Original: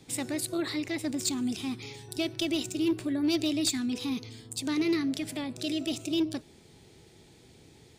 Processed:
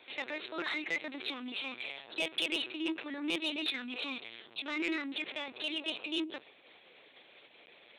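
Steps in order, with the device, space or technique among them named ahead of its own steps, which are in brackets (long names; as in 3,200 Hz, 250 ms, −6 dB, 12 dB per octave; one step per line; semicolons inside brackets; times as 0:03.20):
talking toy (linear-prediction vocoder at 8 kHz pitch kept; high-pass filter 690 Hz 12 dB per octave; parametric band 2,500 Hz +5 dB 0.46 octaves; soft clipping −28.5 dBFS, distortion −17 dB)
level +5 dB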